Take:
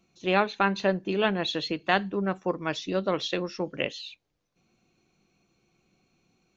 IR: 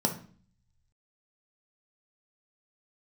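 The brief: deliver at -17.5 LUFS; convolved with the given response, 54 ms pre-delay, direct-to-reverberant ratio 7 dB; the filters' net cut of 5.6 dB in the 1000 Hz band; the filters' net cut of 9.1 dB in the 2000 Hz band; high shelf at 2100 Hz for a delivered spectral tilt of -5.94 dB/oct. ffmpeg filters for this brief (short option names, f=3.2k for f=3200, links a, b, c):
-filter_complex "[0:a]equalizer=f=1k:t=o:g=-4.5,equalizer=f=2k:t=o:g=-6,highshelf=f=2.1k:g=-8,asplit=2[a][b];[1:a]atrim=start_sample=2205,adelay=54[c];[b][c]afir=irnorm=-1:irlink=0,volume=-15.5dB[d];[a][d]amix=inputs=2:normalize=0,volume=11dB"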